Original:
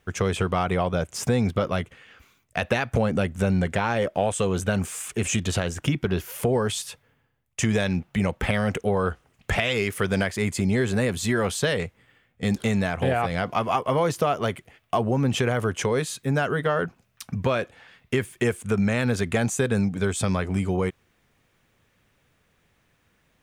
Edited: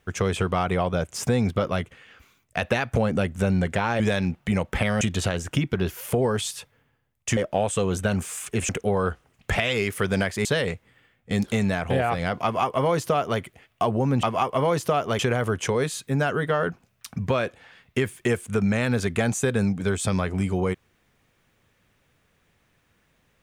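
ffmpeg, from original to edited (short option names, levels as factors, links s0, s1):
-filter_complex "[0:a]asplit=8[s0][s1][s2][s3][s4][s5][s6][s7];[s0]atrim=end=4.002[s8];[s1]atrim=start=7.678:end=8.692[s9];[s2]atrim=start=5.318:end=7.682[s10];[s3]atrim=start=3.998:end=5.322[s11];[s4]atrim=start=8.688:end=10.452[s12];[s5]atrim=start=11.568:end=15.352[s13];[s6]atrim=start=13.558:end=14.522[s14];[s7]atrim=start=15.348[s15];[s8][s9]acrossfade=d=0.004:c1=hsin:c2=hsin[s16];[s16][s10]acrossfade=d=0.004:c1=hsin:c2=hsin[s17];[s17][s11]acrossfade=d=0.004:c1=hsin:c2=hsin[s18];[s18][s12]acrossfade=d=0.004:c1=hsin:c2=hsin[s19];[s19][s13]acrossfade=d=0.004:c1=hsin:c2=hsin[s20];[s20][s14]acrossfade=d=0.004:c1=hsin:c2=hsin[s21];[s21][s15]acrossfade=d=0.004:c1=hsin:c2=hsin"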